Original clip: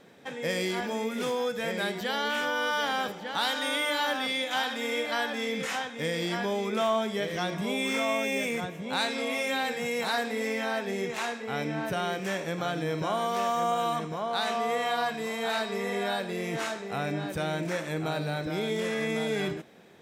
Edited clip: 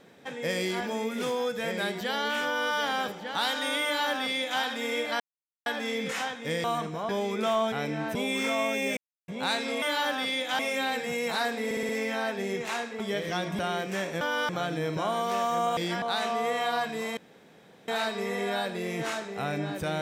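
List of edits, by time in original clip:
2.45–2.73 copy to 12.54
3.84–4.61 copy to 9.32
5.2 insert silence 0.46 s
6.18–6.43 swap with 13.82–14.27
7.06–7.65 swap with 11.49–11.92
8.47–8.78 mute
10.38 stutter 0.06 s, 5 plays
15.42 insert room tone 0.71 s

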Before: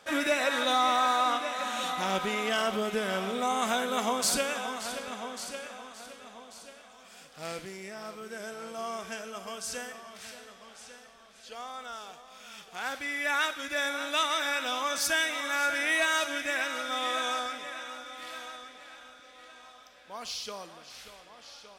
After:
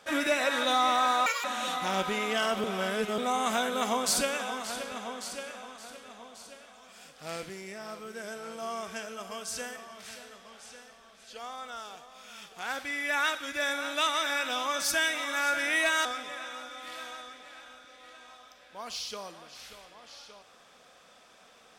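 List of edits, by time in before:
1.26–1.6 speed 189%
2.8–3.34 reverse
16.21–17.4 cut

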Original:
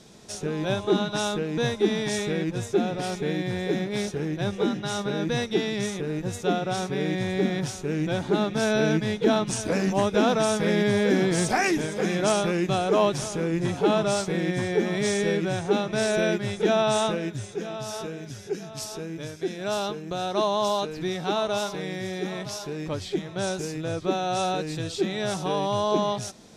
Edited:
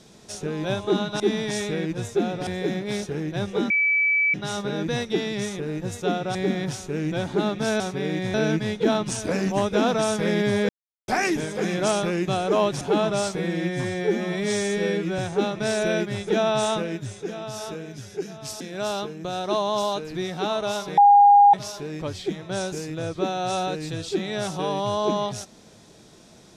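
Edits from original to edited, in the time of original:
1.2–1.78 cut
3.05–3.52 cut
4.75 add tone 2300 Hz -17.5 dBFS 0.64 s
6.76–7.3 move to 8.75
11.1–11.49 mute
13.22–13.74 cut
14.3–15.51 stretch 1.5×
18.93–19.47 cut
21.84–22.4 bleep 813 Hz -9.5 dBFS

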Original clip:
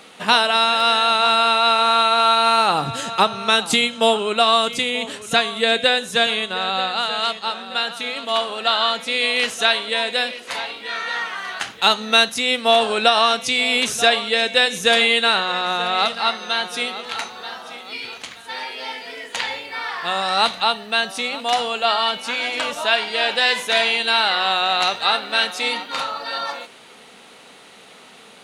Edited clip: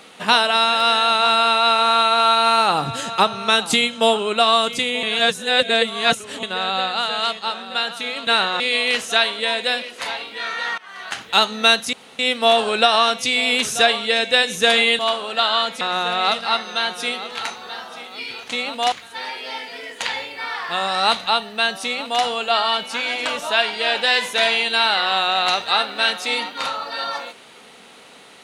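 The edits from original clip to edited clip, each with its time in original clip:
5.03–6.43 reverse
8.27–9.09 swap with 15.22–15.55
11.27–11.7 fade in, from -21.5 dB
12.42 insert room tone 0.26 s
21.18–21.58 copy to 18.26

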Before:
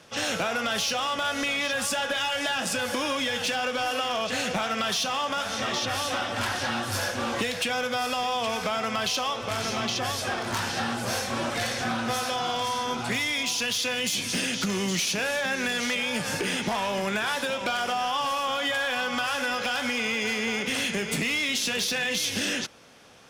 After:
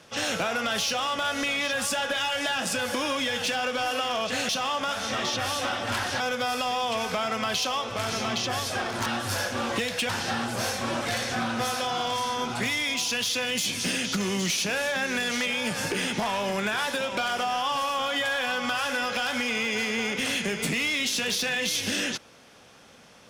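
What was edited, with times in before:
4.49–4.98 cut
6.69–7.72 move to 10.58

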